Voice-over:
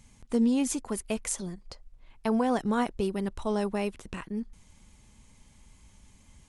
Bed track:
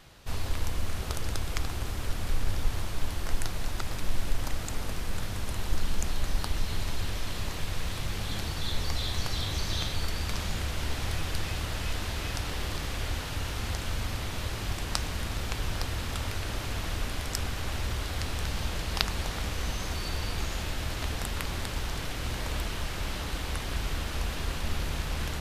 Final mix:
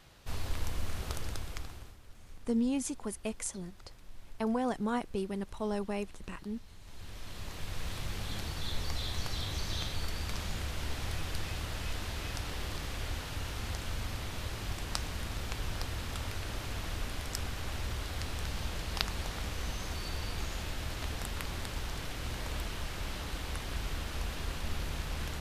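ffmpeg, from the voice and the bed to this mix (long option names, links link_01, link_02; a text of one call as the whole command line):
ffmpeg -i stem1.wav -i stem2.wav -filter_complex "[0:a]adelay=2150,volume=-5.5dB[link_01];[1:a]volume=13dB,afade=type=out:start_time=1.11:duration=0.87:silence=0.125893,afade=type=in:start_time=6.81:duration=1.11:silence=0.133352[link_02];[link_01][link_02]amix=inputs=2:normalize=0" out.wav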